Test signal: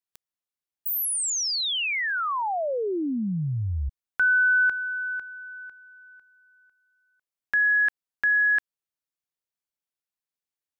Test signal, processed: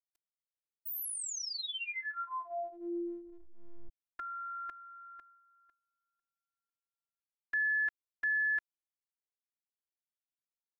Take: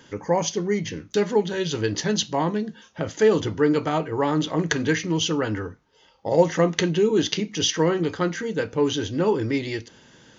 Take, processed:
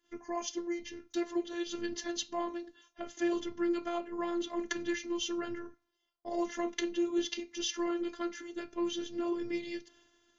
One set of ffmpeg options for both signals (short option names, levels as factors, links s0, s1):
-af "afftfilt=real='hypot(re,im)*cos(PI*b)':imag='0':win_size=512:overlap=0.75,agate=range=0.141:threshold=0.00447:ratio=3:release=398:detection=peak,volume=0.376"